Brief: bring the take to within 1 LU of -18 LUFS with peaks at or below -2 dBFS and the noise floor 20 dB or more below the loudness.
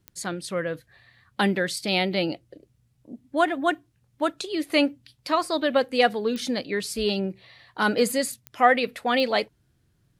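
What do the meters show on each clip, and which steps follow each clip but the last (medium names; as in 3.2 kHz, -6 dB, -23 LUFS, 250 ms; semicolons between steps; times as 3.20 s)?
clicks found 4; loudness -25.0 LUFS; peak level -5.0 dBFS; loudness target -18.0 LUFS
-> de-click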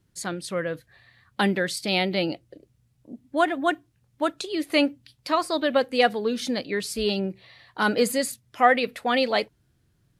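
clicks found 0; loudness -25.0 LUFS; peak level -5.0 dBFS; loudness target -18.0 LUFS
-> trim +7 dB; peak limiter -2 dBFS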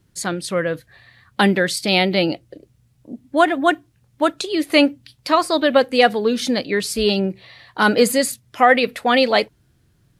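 loudness -18.5 LUFS; peak level -2.0 dBFS; noise floor -60 dBFS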